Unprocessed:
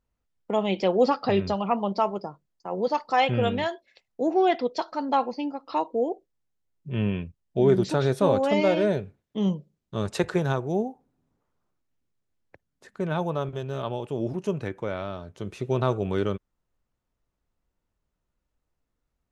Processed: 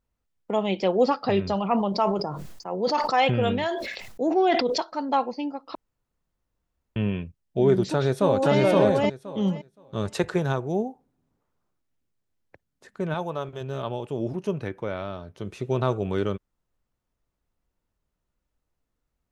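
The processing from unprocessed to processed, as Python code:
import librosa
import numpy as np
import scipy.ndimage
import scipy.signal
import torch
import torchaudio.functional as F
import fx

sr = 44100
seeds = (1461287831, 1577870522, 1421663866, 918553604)

y = fx.sustainer(x, sr, db_per_s=40.0, at=(1.45, 4.78))
y = fx.echo_throw(y, sr, start_s=7.9, length_s=0.67, ms=520, feedback_pct=15, wet_db=0.0)
y = fx.low_shelf(y, sr, hz=340.0, db=-7.0, at=(13.14, 13.61))
y = fx.peak_eq(y, sr, hz=7300.0, db=-10.5, octaves=0.22, at=(14.36, 15.45))
y = fx.edit(y, sr, fx.room_tone_fill(start_s=5.75, length_s=1.21), tone=tone)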